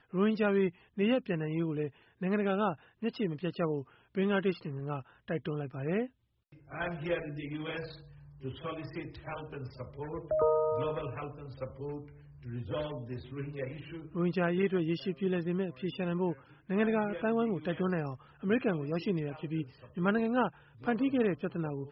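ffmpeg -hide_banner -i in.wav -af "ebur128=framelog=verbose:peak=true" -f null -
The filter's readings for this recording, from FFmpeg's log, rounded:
Integrated loudness:
  I:         -33.7 LUFS
  Threshold: -44.0 LUFS
Loudness range:
  LRA:         7.2 LU
  Threshold: -54.4 LUFS
  LRA low:   -39.5 LUFS
  LRA high:  -32.3 LUFS
True peak:
  Peak:      -16.4 dBFS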